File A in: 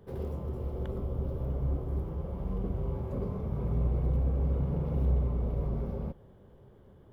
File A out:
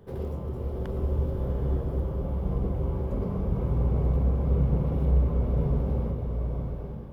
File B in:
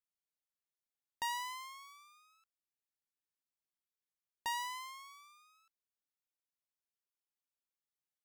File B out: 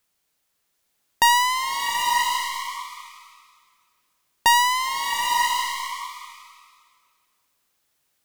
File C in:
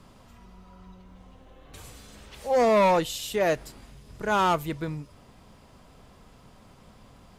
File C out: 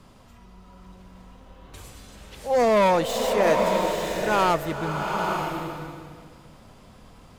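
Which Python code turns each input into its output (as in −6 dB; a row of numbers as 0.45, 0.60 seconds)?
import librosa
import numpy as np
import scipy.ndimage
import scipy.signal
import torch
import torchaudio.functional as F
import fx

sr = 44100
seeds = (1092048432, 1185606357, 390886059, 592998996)

y = fx.tracing_dist(x, sr, depth_ms=0.037)
y = fx.rev_bloom(y, sr, seeds[0], attack_ms=920, drr_db=2.0)
y = y * 10.0 ** (-26 / 20.0) / np.sqrt(np.mean(np.square(y)))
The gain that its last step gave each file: +3.0, +21.5, +1.0 decibels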